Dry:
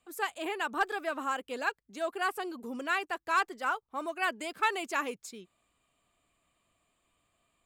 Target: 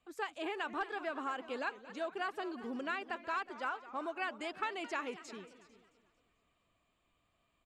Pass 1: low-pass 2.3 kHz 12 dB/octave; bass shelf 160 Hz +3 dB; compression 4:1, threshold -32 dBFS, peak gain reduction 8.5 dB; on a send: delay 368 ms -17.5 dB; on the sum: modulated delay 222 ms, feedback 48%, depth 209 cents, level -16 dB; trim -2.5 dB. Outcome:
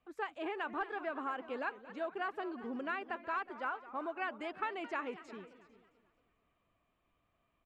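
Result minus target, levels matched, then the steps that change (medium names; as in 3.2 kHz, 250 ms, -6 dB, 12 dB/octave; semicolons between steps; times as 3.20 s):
4 kHz band -5.5 dB
change: low-pass 5.1 kHz 12 dB/octave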